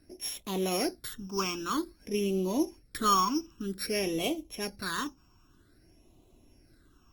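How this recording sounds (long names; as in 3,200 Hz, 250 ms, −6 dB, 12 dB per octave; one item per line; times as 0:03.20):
a buzz of ramps at a fixed pitch in blocks of 8 samples
phaser sweep stages 8, 0.52 Hz, lowest notch 550–1,600 Hz
Opus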